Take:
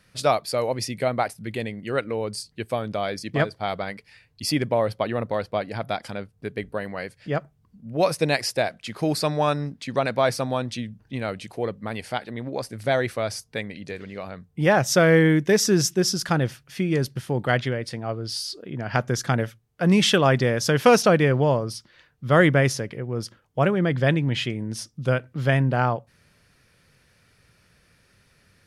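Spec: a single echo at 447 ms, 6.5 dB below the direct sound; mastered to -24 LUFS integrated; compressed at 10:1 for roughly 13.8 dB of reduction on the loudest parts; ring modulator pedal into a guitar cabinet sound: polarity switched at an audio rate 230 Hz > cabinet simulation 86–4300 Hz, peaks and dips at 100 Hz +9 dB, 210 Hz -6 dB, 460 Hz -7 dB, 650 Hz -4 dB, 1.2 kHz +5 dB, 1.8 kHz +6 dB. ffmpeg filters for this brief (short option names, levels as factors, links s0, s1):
-af "acompressor=threshold=0.0562:ratio=10,aecho=1:1:447:0.473,aeval=exprs='val(0)*sgn(sin(2*PI*230*n/s))':c=same,highpass=86,equalizer=f=100:t=q:w=4:g=9,equalizer=f=210:t=q:w=4:g=-6,equalizer=f=460:t=q:w=4:g=-7,equalizer=f=650:t=q:w=4:g=-4,equalizer=f=1200:t=q:w=4:g=5,equalizer=f=1800:t=q:w=4:g=6,lowpass=f=4300:w=0.5412,lowpass=f=4300:w=1.3066,volume=2.11"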